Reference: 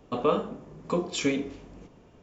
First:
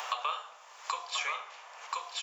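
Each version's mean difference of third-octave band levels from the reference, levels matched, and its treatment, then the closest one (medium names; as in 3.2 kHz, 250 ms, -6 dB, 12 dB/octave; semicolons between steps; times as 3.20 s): 17.5 dB: inverse Chebyshev high-pass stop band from 340 Hz, stop band 50 dB; on a send: delay 1030 ms -6.5 dB; on the sum: three bands compressed up and down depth 100%; trim +2.5 dB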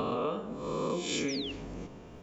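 8.0 dB: reverse spectral sustain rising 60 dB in 0.92 s; compression 5:1, threshold -35 dBFS, peak gain reduction 16.5 dB; painted sound fall, 1.28–1.52 s, 2.6–6.3 kHz -44 dBFS; trim +4 dB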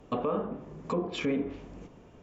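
3.5 dB: low-pass that closes with the level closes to 1.7 kHz, closed at -25.5 dBFS; peaking EQ 4.5 kHz -3.5 dB 0.77 oct; peak limiter -22 dBFS, peak gain reduction 10.5 dB; trim +1.5 dB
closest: third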